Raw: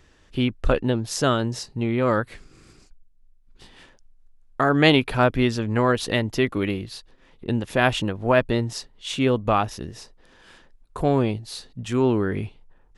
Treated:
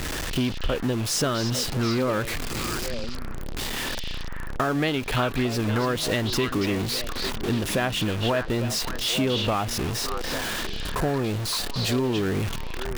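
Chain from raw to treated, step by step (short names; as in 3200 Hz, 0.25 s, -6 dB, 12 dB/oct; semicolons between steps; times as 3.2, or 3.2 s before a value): zero-crossing step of -23 dBFS; compressor, threshold -20 dBFS, peak gain reduction 10.5 dB; delay with a stepping band-pass 0.284 s, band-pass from 3500 Hz, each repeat -1.4 oct, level -2 dB; gain -1 dB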